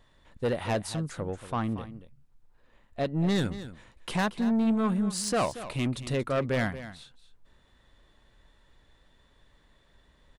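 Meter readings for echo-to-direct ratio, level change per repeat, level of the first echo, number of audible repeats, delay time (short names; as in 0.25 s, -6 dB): -13.5 dB, no steady repeat, -13.5 dB, 1, 0.231 s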